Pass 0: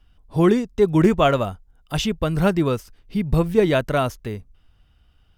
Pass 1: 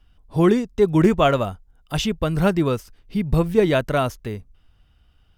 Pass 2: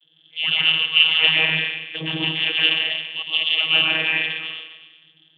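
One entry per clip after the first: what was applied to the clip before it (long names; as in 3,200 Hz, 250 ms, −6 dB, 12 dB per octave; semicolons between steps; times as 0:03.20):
no processing that can be heard
dense smooth reverb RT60 1.3 s, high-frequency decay 0.75×, pre-delay 105 ms, DRR −6 dB; voice inversion scrambler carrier 3,200 Hz; channel vocoder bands 32, saw 159 Hz; level −7.5 dB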